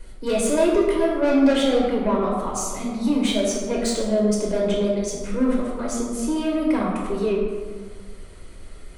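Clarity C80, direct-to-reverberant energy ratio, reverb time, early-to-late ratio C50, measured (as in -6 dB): 2.5 dB, -3.5 dB, 1.6 s, 1.0 dB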